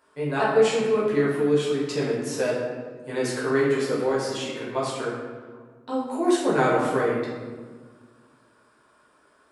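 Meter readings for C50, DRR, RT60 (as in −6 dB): 1.0 dB, −7.5 dB, 1.6 s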